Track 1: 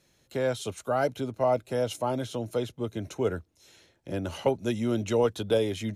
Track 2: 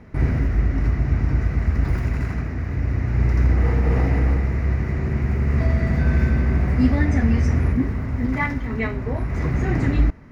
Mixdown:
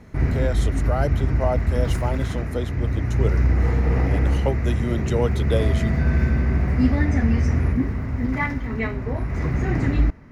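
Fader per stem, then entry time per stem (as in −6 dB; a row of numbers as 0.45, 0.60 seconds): +0.5, −1.0 decibels; 0.00, 0.00 seconds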